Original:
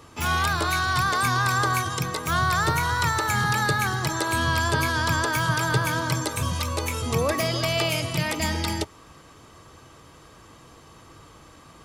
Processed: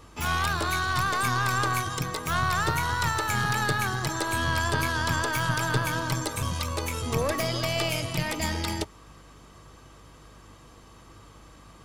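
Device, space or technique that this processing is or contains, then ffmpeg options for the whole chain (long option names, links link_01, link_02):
valve amplifier with mains hum: -af "aeval=exprs='(tanh(5.01*val(0)+0.6)-tanh(0.6))/5.01':channel_layout=same,aeval=exprs='val(0)+0.00224*(sin(2*PI*50*n/s)+sin(2*PI*2*50*n/s)/2+sin(2*PI*3*50*n/s)/3+sin(2*PI*4*50*n/s)/4+sin(2*PI*5*50*n/s)/5)':channel_layout=same"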